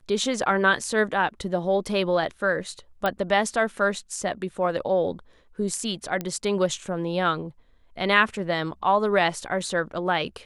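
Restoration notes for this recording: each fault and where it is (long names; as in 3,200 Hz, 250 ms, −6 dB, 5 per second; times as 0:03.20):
0:03.06: click −12 dBFS
0:06.21: click −15 dBFS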